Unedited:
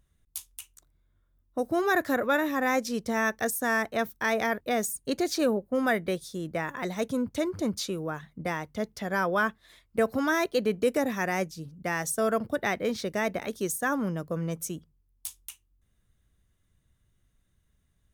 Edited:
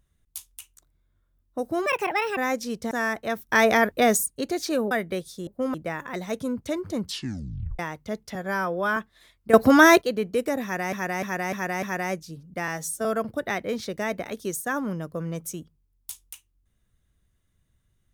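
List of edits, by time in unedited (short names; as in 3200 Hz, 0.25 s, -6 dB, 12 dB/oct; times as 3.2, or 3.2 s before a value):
1.86–2.61 speed 147%
3.15–3.6 cut
4.18–4.95 gain +8 dB
5.6–5.87 move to 6.43
7.69 tape stop 0.79 s
9.04–9.45 stretch 1.5×
10.02–10.5 gain +12 dB
11.11–11.41 loop, 5 plays
11.96–12.21 stretch 1.5×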